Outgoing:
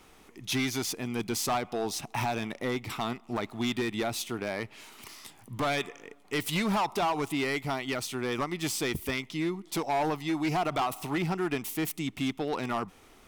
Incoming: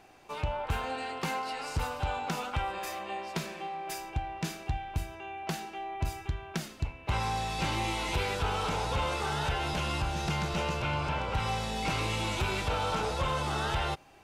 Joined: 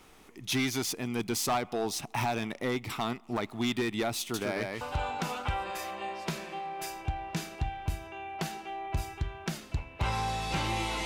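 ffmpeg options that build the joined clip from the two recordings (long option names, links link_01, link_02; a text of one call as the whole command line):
ffmpeg -i cue0.wav -i cue1.wav -filter_complex "[0:a]asettb=1/sr,asplit=3[link_01][link_02][link_03];[link_01]atrim=end=4.194[link_04];[link_02]atrim=start=4.19:end=4.81,asetpts=PTS-STARTPTS,afade=type=in:duration=0.004:curve=qsin,afade=type=out:start_time=0.616:duration=0.004:curve=qsin,aecho=1:1:148:0.668,atrim=end_sample=27342[link_05];[link_03]atrim=start=4.806[link_06];[link_04][link_05]acrossfade=duration=0.004:curve1=hsin:curve2=qsin[link_07];[link_07][link_06]acrossfade=duration=0.004:curve1=qsin:curve2=hsin,apad=whole_dur=11.05,atrim=end=11.05,atrim=end=4.812[link_08];[1:a]atrim=start=1.888:end=8.13[link_09];[link_08][link_09]acrossfade=duration=0.004:curve1=hsin:curve2=hsin" out.wav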